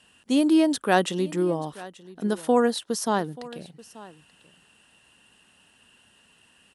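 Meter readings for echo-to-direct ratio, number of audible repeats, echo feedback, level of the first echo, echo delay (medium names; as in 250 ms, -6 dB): -19.5 dB, 1, no regular repeats, -19.5 dB, 883 ms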